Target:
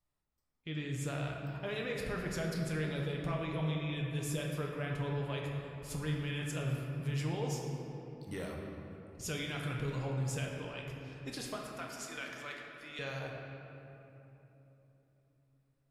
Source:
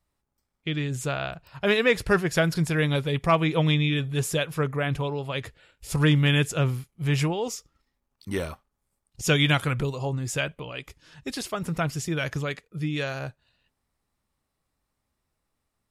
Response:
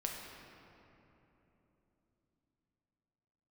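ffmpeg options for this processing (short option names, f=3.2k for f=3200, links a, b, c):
-filter_complex "[0:a]asettb=1/sr,asplit=3[a][b][c];[a]atrim=end=11.564[d];[b]atrim=start=11.56:end=12.99,asetpts=PTS-STARTPTS,afade=t=in:d=0.004:c=qsin,afade=t=out:st=1.426:d=0.004:c=qsin,highpass=790[e];[c]atrim=start=12.986[f];[d][e]acrossfade=d=0.004:c1=hsin:c2=qsin[g];[g][f]acrossfade=d=0.004:c1=qsin:c2=hsin,alimiter=limit=-20.5dB:level=0:latency=1:release=110[h];[1:a]atrim=start_sample=2205[i];[h][i]afir=irnorm=-1:irlink=0,volume=-8.5dB"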